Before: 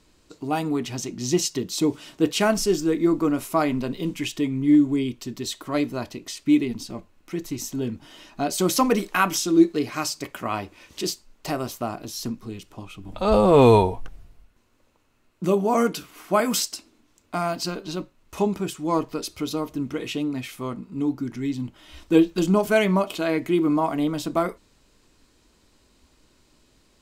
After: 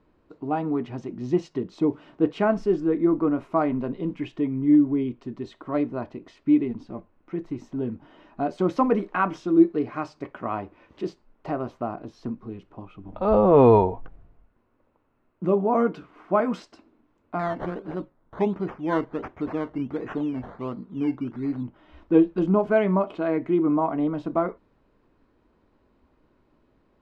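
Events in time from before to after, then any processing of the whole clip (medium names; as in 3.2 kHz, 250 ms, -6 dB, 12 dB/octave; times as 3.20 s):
17.39–21.63 s: decimation with a swept rate 14×, swing 60% 1.4 Hz
whole clip: low-pass 1.3 kHz 12 dB/octave; bass shelf 110 Hz -6 dB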